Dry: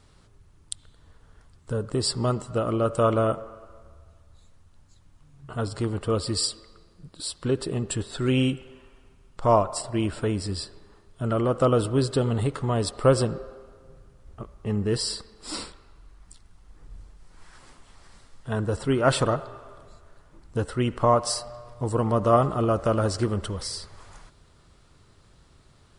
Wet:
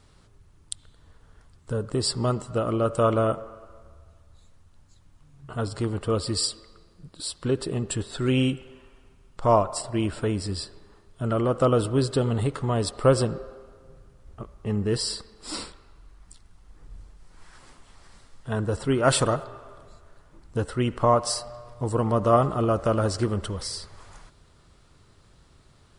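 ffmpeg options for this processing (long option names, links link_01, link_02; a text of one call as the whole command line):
ffmpeg -i in.wav -filter_complex "[0:a]asettb=1/sr,asplit=3[link_01][link_02][link_03];[link_01]atrim=end=19.034[link_04];[link_02]atrim=start=19.03:end=19.44,asetpts=PTS-STARTPTS,afade=type=in:duration=0.004:curve=qsin,afade=type=out:start_time=0.406:duration=0.004:curve=qsin,highshelf=frequency=6500:gain=10.5[link_05];[link_03]atrim=start=19.436[link_06];[link_04][link_05]acrossfade=duration=0.004:curve1=hsin:curve2=qsin[link_07];[link_07][link_06]acrossfade=duration=0.004:curve1=qsin:curve2=hsin" out.wav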